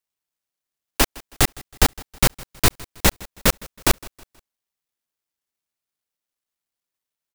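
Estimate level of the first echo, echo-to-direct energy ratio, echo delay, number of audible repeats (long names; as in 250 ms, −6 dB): −22.0 dB, −21.5 dB, 160 ms, 2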